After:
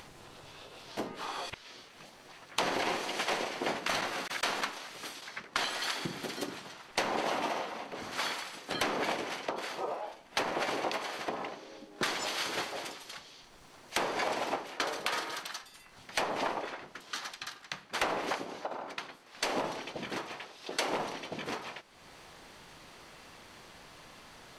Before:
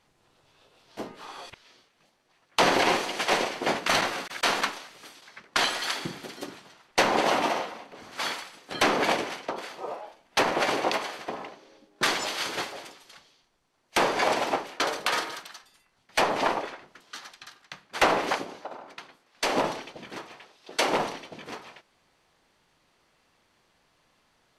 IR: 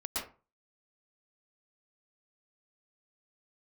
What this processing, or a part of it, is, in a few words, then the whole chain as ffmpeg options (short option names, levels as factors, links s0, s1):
upward and downward compression: -af "acompressor=mode=upward:threshold=0.00447:ratio=2.5,acompressor=threshold=0.0112:ratio=3,volume=1.78"